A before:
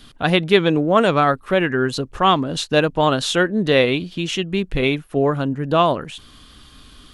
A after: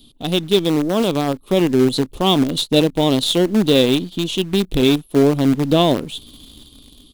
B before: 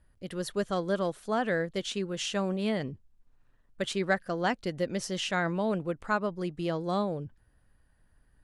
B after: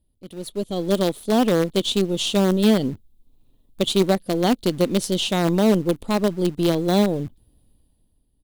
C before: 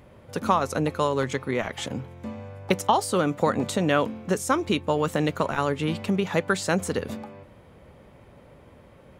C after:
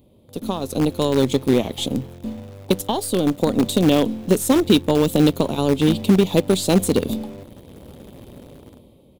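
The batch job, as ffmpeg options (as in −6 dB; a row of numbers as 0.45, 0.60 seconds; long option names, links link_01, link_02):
-filter_complex "[0:a]firequalizer=gain_entry='entry(150,0);entry(260,6);entry(540,-2);entry(1000,-9);entry(1600,-25);entry(2300,-9);entry(3600,6);entry(5400,-5);entry(12000,9)':delay=0.05:min_phase=1,dynaudnorm=framelen=140:gausssize=11:maxgain=12dB,asplit=2[link_01][link_02];[link_02]acrusher=bits=3:dc=4:mix=0:aa=0.000001,volume=-7dB[link_03];[link_01][link_03]amix=inputs=2:normalize=0,volume=-4.5dB"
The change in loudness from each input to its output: +1.5, +10.5, +6.5 LU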